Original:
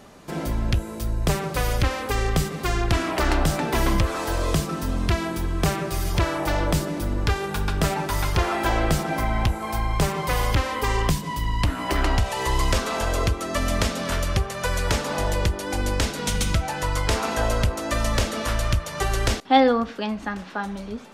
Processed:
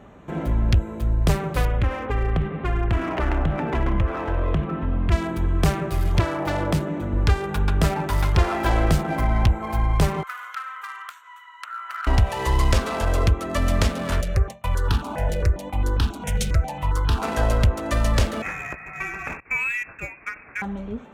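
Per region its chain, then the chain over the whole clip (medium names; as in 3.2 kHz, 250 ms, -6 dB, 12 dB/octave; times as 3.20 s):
1.65–5.12 s: low-pass 3.2 kHz 24 dB/octave + compression 2:1, threshold -22 dBFS
6.20–7.13 s: high-pass 99 Hz + treble shelf 5.3 kHz -3.5 dB
10.23–12.07 s: ladder high-pass 1.3 kHz, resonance 85% + treble shelf 7.1 kHz +10 dB
14.21–17.22 s: gate with hold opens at -19 dBFS, closes at -24 dBFS + stepped phaser 7.4 Hz 280–2100 Hz
18.42–20.62 s: steep high-pass 480 Hz 48 dB/octave + compression, threshold -21 dBFS + frequency inversion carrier 3.1 kHz
whole clip: local Wiener filter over 9 samples; high-pass 42 Hz; bass shelf 100 Hz +9 dB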